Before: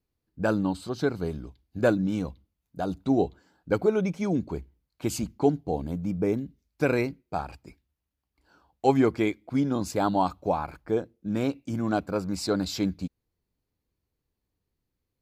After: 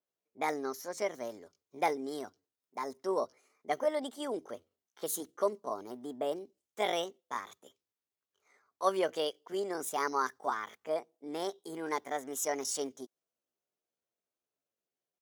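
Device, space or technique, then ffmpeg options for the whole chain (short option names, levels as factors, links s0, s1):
chipmunk voice: -af "highpass=280,asetrate=62367,aresample=44100,atempo=0.707107,adynamicequalizer=threshold=0.00447:dfrequency=3900:dqfactor=0.7:tfrequency=3900:tqfactor=0.7:attack=5:release=100:ratio=0.375:range=3.5:mode=boostabove:tftype=highshelf,volume=0.473"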